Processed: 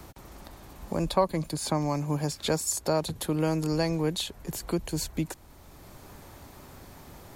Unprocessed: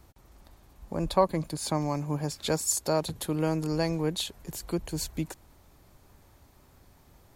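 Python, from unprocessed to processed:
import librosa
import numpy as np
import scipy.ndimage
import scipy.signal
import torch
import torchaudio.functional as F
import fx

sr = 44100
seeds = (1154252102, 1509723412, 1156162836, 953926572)

y = fx.band_squash(x, sr, depth_pct=40)
y = y * librosa.db_to_amplitude(1.5)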